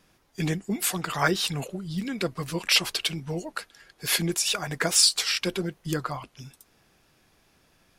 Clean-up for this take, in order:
clipped peaks rebuilt −8 dBFS

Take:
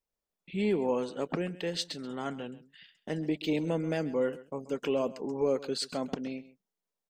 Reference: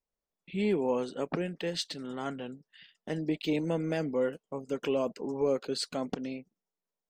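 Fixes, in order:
echo removal 133 ms −17.5 dB

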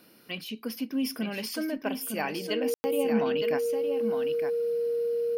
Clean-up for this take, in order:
notch filter 470 Hz, Q 30
ambience match 0:02.74–0:02.84
echo removal 911 ms −6.5 dB

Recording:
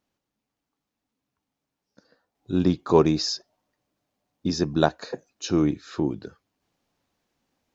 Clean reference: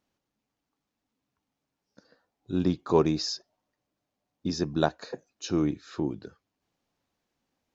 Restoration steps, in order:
level 0 dB, from 0:02.35 −4.5 dB

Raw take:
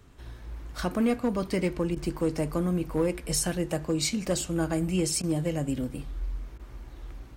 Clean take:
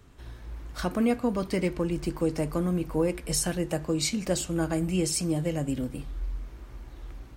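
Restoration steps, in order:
clipped peaks rebuilt −18 dBFS
repair the gap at 0:01.95/0:05.22/0:06.58, 13 ms

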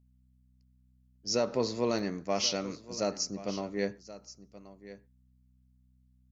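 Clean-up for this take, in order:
hum removal 63 Hz, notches 4
repair the gap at 0:01.99, 2.1 ms
echo removal 1,078 ms −16 dB

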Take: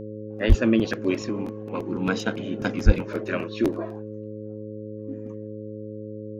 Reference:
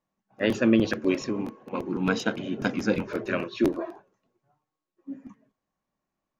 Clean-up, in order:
hum removal 106.6 Hz, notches 5
0:00.48–0:00.60: high-pass filter 140 Hz 24 dB per octave
0:02.85–0:02.97: high-pass filter 140 Hz 24 dB per octave

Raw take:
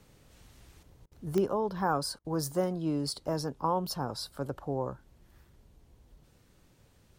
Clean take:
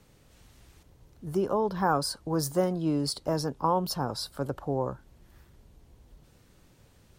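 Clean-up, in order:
click removal
repair the gap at 0:01.06/0:02.19, 54 ms
level 0 dB, from 0:01.46 +3.5 dB

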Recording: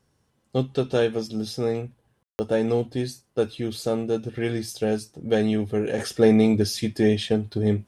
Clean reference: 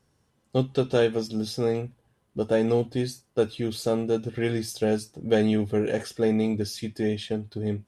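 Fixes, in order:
ambience match 0:02.23–0:02.39
level correction −6.5 dB, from 0:05.98

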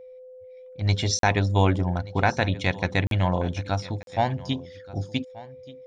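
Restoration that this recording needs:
notch filter 510 Hz, Q 30
repair the gap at 0:01.19/0:03.07/0:04.03, 42 ms
echo removal 1,180 ms −19.5 dB

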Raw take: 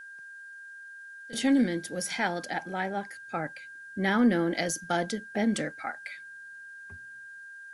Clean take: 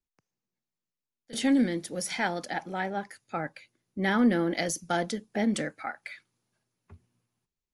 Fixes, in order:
notch filter 1,600 Hz, Q 30
downward expander −38 dBFS, range −21 dB

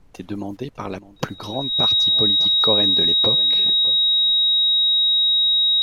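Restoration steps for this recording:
notch filter 3,800 Hz, Q 30
downward expander −33 dBFS, range −21 dB
echo removal 606 ms −17 dB

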